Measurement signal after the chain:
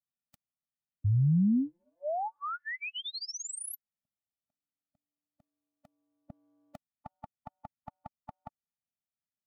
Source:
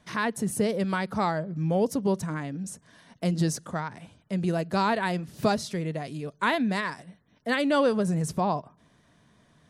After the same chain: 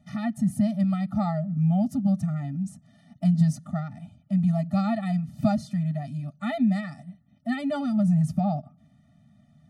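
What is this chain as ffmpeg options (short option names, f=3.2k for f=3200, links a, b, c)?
-af "equalizer=f=160:w=0.31:g=13,afftfilt=real='re*eq(mod(floor(b*sr/1024/290),2),0)':imag='im*eq(mod(floor(b*sr/1024/290),2),0)':win_size=1024:overlap=0.75,volume=-7dB"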